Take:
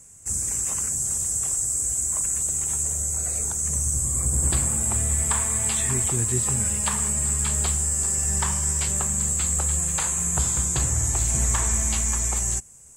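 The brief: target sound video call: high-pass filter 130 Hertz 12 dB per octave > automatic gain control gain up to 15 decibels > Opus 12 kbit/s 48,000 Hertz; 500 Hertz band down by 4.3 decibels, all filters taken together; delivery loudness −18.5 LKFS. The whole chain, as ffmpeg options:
ffmpeg -i in.wav -af "highpass=130,equalizer=frequency=500:width_type=o:gain=-6,dynaudnorm=maxgain=15dB,volume=6.5dB" -ar 48000 -c:a libopus -b:a 12k out.opus

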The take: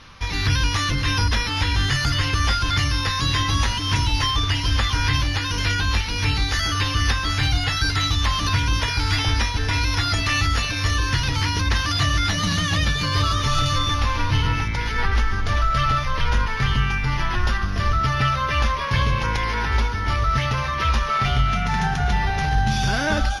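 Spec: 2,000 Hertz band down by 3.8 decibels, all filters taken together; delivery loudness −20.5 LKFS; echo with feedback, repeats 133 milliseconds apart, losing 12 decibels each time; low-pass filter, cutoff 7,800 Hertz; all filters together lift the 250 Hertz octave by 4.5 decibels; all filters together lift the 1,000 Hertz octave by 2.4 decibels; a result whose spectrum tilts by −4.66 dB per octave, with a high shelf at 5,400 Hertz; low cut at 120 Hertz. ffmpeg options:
ffmpeg -i in.wav -af "highpass=120,lowpass=7800,equalizer=frequency=250:width_type=o:gain=6.5,equalizer=frequency=1000:width_type=o:gain=5,equalizer=frequency=2000:width_type=o:gain=-6.5,highshelf=frequency=5400:gain=-3,aecho=1:1:133|266|399:0.251|0.0628|0.0157,volume=2dB" out.wav

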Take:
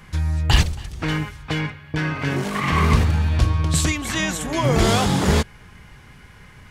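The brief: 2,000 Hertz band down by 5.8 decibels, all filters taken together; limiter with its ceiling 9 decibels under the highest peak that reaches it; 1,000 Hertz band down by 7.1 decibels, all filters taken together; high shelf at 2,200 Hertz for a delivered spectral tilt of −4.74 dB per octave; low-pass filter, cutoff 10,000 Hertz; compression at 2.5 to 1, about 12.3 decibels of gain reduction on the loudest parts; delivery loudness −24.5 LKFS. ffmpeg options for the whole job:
ffmpeg -i in.wav -af "lowpass=10000,equalizer=frequency=1000:width_type=o:gain=-8,equalizer=frequency=2000:width_type=o:gain=-7.5,highshelf=frequency=2200:gain=4.5,acompressor=threshold=-29dB:ratio=2.5,volume=8dB,alimiter=limit=-15dB:level=0:latency=1" out.wav

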